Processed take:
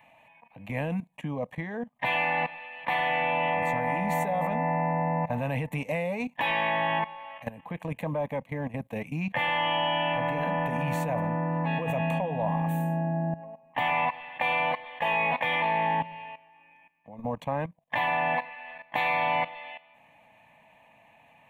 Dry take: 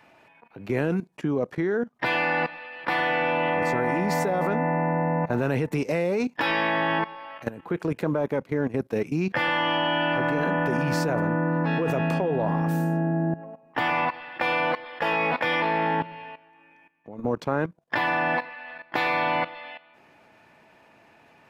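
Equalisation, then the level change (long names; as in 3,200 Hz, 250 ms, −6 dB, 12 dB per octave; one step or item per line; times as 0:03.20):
parametric band 77 Hz −4 dB 1.1 octaves
phaser with its sweep stopped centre 1,400 Hz, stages 6
0.0 dB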